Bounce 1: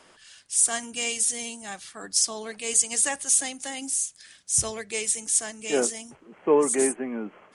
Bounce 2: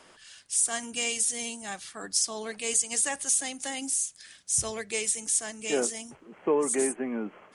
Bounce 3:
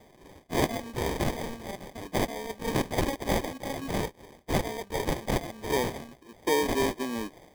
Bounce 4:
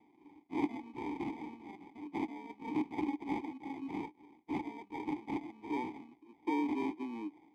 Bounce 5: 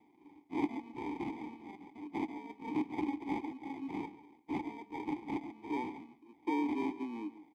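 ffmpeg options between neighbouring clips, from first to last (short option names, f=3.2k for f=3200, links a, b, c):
-af "acompressor=threshold=-25dB:ratio=2"
-af "equalizer=f=190:t=o:w=0.24:g=-8.5,acrusher=samples=32:mix=1:aa=0.000001"
-filter_complex "[0:a]asplit=3[a][b][c];[a]bandpass=f=300:t=q:w=8,volume=0dB[d];[b]bandpass=f=870:t=q:w=8,volume=-6dB[e];[c]bandpass=f=2.24k:t=q:w=8,volume=-9dB[f];[d][e][f]amix=inputs=3:normalize=0,volume=2dB"
-filter_complex "[0:a]asplit=2[a][b];[b]adelay=139.9,volume=-15dB,highshelf=f=4k:g=-3.15[c];[a][c]amix=inputs=2:normalize=0"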